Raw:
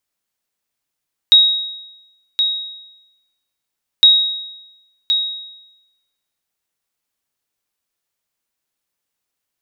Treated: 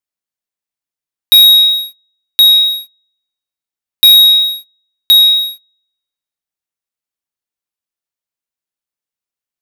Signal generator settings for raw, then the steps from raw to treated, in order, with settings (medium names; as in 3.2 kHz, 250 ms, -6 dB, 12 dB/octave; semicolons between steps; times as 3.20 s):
sonar ping 3.79 kHz, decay 0.96 s, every 2.71 s, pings 2, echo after 1.07 s, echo -8 dB -2.5 dBFS
waveshaping leveller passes 5